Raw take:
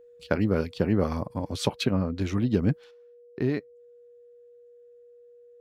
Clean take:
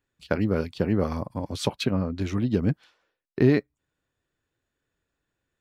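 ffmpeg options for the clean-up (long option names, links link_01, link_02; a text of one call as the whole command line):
ffmpeg -i in.wav -af "bandreject=frequency=480:width=30,asetnsamples=nb_out_samples=441:pad=0,asendcmd='2.91 volume volume 7.5dB',volume=0dB" out.wav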